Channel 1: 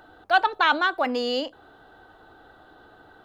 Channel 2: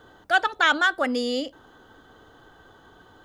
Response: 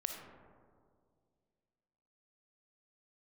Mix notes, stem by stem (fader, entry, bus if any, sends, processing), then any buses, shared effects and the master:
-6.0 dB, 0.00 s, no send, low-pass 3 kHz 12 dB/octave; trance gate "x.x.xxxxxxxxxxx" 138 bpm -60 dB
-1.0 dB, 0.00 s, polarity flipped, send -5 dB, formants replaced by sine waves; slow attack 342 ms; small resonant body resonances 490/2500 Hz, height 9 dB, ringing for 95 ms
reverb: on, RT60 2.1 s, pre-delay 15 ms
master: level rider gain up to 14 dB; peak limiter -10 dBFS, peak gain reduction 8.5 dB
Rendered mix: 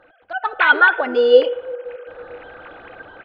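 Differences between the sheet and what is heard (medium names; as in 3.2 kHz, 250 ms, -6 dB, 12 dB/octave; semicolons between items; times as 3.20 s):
stem 2: polarity flipped; master: missing peak limiter -10 dBFS, peak gain reduction 8.5 dB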